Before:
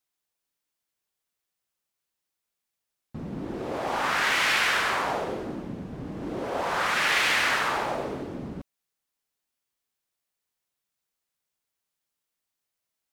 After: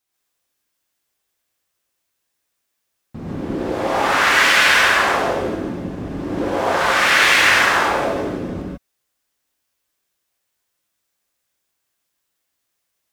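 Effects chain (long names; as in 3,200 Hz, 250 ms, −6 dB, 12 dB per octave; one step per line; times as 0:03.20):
reverb whose tail is shaped and stops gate 170 ms rising, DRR −5 dB
level +4 dB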